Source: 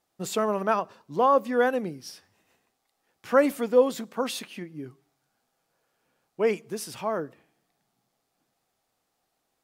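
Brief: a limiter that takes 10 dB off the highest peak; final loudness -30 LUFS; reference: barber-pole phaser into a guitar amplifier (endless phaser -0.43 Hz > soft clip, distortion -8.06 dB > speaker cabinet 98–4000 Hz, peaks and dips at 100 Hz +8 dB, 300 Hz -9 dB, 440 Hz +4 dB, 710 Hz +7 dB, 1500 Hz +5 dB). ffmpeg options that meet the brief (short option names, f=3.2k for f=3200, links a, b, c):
-filter_complex "[0:a]alimiter=limit=-18.5dB:level=0:latency=1,asplit=2[a][b];[b]afreqshift=-0.43[c];[a][c]amix=inputs=2:normalize=1,asoftclip=threshold=-33.5dB,highpass=98,equalizer=f=100:t=q:w=4:g=8,equalizer=f=300:t=q:w=4:g=-9,equalizer=f=440:t=q:w=4:g=4,equalizer=f=710:t=q:w=4:g=7,equalizer=f=1.5k:t=q:w=4:g=5,lowpass=f=4k:w=0.5412,lowpass=f=4k:w=1.3066,volume=8dB"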